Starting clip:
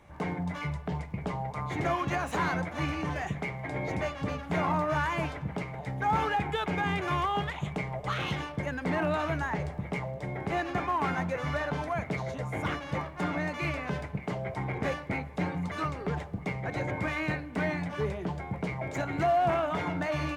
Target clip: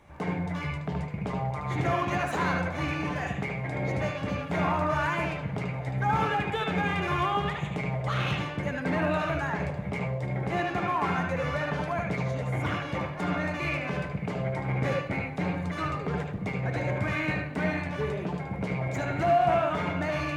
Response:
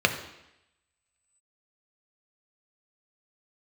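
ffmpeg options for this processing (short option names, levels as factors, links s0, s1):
-filter_complex "[0:a]asplit=2[s0][s1];[1:a]atrim=start_sample=2205,adelay=74[s2];[s1][s2]afir=irnorm=-1:irlink=0,volume=0.158[s3];[s0][s3]amix=inputs=2:normalize=0"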